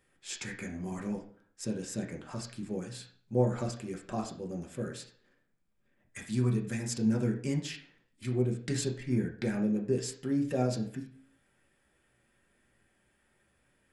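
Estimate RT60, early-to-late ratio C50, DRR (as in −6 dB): 0.50 s, 9.0 dB, 0.0 dB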